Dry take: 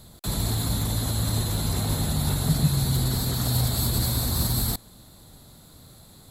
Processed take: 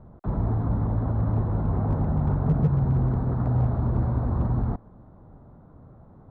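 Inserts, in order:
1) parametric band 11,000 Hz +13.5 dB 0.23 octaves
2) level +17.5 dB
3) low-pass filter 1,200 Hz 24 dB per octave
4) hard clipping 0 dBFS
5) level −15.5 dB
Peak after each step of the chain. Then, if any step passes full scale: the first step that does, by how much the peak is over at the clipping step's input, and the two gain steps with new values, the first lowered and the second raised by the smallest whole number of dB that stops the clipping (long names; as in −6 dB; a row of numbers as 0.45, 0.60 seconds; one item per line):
−7.5, +10.0, +7.0, 0.0, −15.5 dBFS
step 2, 7.0 dB
step 2 +10.5 dB, step 5 −8.5 dB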